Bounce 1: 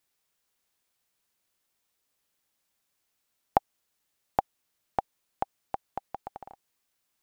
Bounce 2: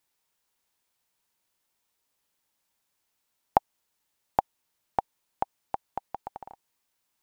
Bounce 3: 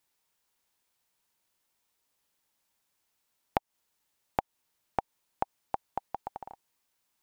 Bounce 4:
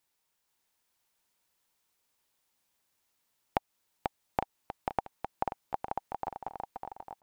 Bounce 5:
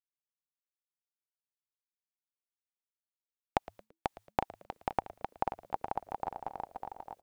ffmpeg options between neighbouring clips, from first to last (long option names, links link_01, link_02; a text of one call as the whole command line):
ffmpeg -i in.wav -af "equalizer=frequency=920:width=7.4:gain=6.5" out.wav
ffmpeg -i in.wav -af "acompressor=threshold=-24dB:ratio=10" out.wav
ffmpeg -i in.wav -af "aecho=1:1:490|857.5|1133|1340|1495:0.631|0.398|0.251|0.158|0.1,volume=-1.5dB" out.wav
ffmpeg -i in.wav -filter_complex "[0:a]agate=range=-33dB:threshold=-57dB:ratio=3:detection=peak,asplit=4[link_01][link_02][link_03][link_04];[link_02]adelay=112,afreqshift=-110,volume=-19dB[link_05];[link_03]adelay=224,afreqshift=-220,volume=-27dB[link_06];[link_04]adelay=336,afreqshift=-330,volume=-34.9dB[link_07];[link_01][link_05][link_06][link_07]amix=inputs=4:normalize=0" out.wav